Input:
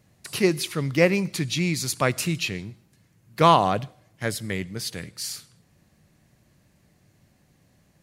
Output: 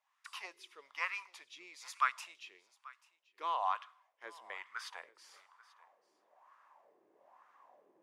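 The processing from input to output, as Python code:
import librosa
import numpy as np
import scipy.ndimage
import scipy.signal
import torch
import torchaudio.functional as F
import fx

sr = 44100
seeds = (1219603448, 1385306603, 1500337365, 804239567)

y = fx.graphic_eq_15(x, sr, hz=(160, 1000, 4000), db=(-4, 12, 6))
y = fx.filter_sweep_highpass(y, sr, from_hz=3000.0, to_hz=400.0, start_s=3.52, end_s=7.48, q=0.76)
y = fx.peak_eq(y, sr, hz=4200.0, db=-12.0, octaves=0.28)
y = fx.wah_lfo(y, sr, hz=1.1, low_hz=360.0, high_hz=1300.0, q=3.9)
y = y + 10.0 ** (-21.5 / 20.0) * np.pad(y, (int(837 * sr / 1000.0), 0))[:len(y)]
y = y * 10.0 ** (8.0 / 20.0)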